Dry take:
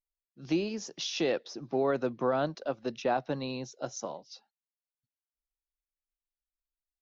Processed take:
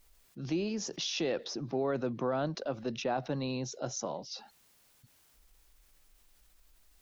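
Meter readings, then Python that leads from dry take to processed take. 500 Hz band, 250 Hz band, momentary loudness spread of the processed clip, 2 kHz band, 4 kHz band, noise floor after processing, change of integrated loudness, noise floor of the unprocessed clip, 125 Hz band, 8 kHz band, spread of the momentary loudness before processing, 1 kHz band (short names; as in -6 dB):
-3.0 dB, -1.5 dB, 8 LU, -3.0 dB, +0.5 dB, -66 dBFS, -2.5 dB, under -85 dBFS, +2.0 dB, n/a, 11 LU, -3.5 dB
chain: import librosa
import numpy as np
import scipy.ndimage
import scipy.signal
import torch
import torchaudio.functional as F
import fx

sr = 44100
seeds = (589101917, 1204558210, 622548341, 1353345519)

y = fx.low_shelf(x, sr, hz=210.0, db=6.0)
y = fx.env_flatten(y, sr, amount_pct=50)
y = y * 10.0 ** (-6.5 / 20.0)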